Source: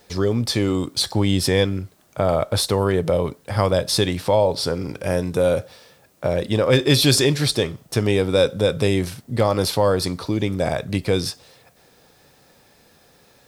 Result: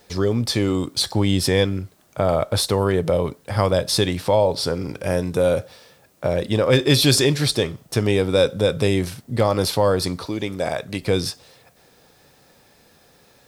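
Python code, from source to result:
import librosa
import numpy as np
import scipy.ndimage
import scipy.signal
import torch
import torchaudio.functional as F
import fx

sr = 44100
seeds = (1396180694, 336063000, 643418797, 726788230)

y = fx.low_shelf(x, sr, hz=230.0, db=-10.0, at=(10.26, 11.02))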